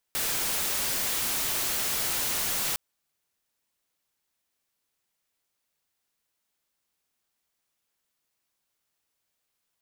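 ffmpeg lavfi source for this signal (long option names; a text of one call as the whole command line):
ffmpeg -f lavfi -i "anoisesrc=color=white:amplitude=0.0651:duration=2.61:sample_rate=44100:seed=1" out.wav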